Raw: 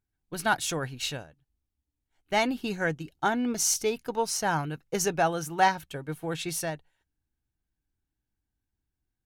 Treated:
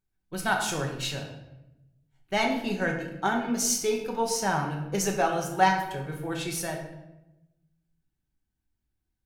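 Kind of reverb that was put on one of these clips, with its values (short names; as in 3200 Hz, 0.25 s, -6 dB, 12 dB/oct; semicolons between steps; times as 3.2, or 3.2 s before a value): shoebox room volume 350 m³, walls mixed, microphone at 1.1 m; gain -2 dB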